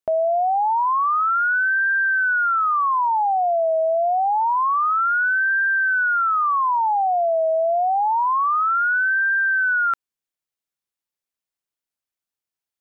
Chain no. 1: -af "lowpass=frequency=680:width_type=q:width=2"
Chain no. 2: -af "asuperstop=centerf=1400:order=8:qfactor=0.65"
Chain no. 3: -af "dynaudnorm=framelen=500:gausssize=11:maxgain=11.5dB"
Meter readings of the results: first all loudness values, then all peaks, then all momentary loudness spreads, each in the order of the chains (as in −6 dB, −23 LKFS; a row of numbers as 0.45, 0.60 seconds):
−18.0, −24.5, −9.0 LKFS; −10.0, −18.0, −5.0 dBFS; 17, 19, 11 LU